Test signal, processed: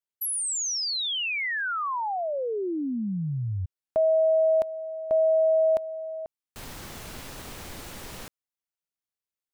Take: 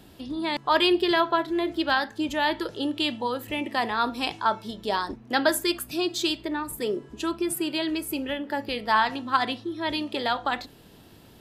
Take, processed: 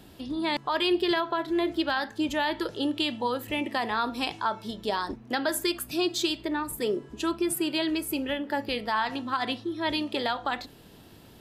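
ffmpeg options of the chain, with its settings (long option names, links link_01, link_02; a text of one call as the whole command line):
ffmpeg -i in.wav -af "alimiter=limit=-16.5dB:level=0:latency=1:release=149" out.wav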